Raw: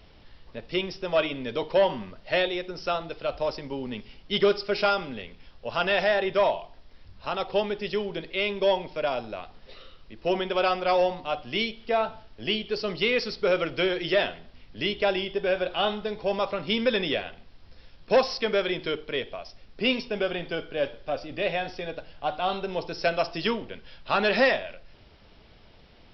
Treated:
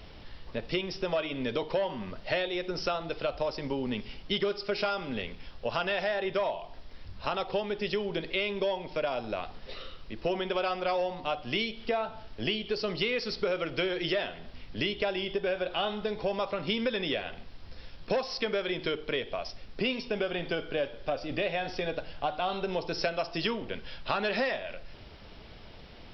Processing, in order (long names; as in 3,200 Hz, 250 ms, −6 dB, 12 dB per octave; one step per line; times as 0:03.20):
downward compressor 5 to 1, threshold −33 dBFS, peak gain reduction 15.5 dB
level +5 dB